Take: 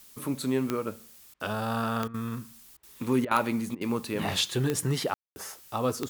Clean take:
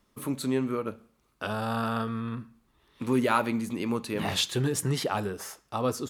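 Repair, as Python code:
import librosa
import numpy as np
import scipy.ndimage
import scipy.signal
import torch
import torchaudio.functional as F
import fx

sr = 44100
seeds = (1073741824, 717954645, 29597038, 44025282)

y = fx.fix_declick_ar(x, sr, threshold=10.0)
y = fx.fix_ambience(y, sr, seeds[0], print_start_s=2.5, print_end_s=3.0, start_s=5.14, end_s=5.36)
y = fx.fix_interpolate(y, sr, at_s=(1.34, 2.08, 2.77, 3.25, 3.75), length_ms=60.0)
y = fx.noise_reduce(y, sr, print_start_s=2.5, print_end_s=3.0, reduce_db=15.0)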